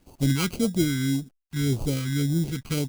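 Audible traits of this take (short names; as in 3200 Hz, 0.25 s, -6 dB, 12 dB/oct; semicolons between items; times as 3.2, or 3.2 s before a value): aliases and images of a low sample rate 1800 Hz, jitter 0%; phasing stages 2, 1.8 Hz, lowest notch 560–1800 Hz; a quantiser's noise floor 12-bit, dither none; Opus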